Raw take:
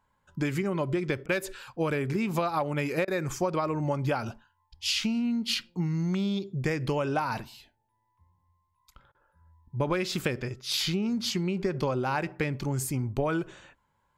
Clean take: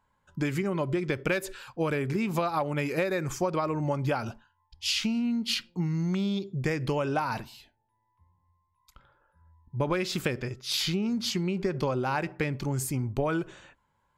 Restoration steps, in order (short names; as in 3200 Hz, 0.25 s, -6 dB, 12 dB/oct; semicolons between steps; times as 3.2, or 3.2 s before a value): interpolate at 1.26/3.05/9.12, 26 ms